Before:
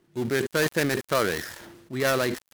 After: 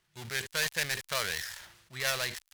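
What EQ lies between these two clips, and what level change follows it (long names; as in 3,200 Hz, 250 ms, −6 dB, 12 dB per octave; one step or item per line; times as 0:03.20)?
dynamic equaliser 1,300 Hz, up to −6 dB, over −43 dBFS, Q 3.2
guitar amp tone stack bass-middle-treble 10-0-10
high-shelf EQ 8,700 Hz −7 dB
+3.0 dB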